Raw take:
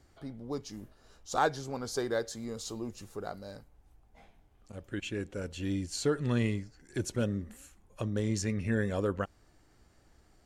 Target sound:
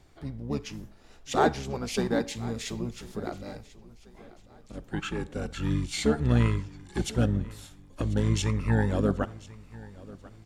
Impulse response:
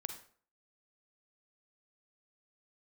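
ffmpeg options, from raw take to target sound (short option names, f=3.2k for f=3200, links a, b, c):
-filter_complex "[0:a]asplit=2[a][b];[b]asetrate=22050,aresample=44100,atempo=2,volume=0dB[c];[a][c]amix=inputs=2:normalize=0,aecho=1:1:1041|2082|3123:0.1|0.041|0.0168,asplit=2[d][e];[1:a]atrim=start_sample=2205[f];[e][f]afir=irnorm=-1:irlink=0,volume=-9dB[g];[d][g]amix=inputs=2:normalize=0"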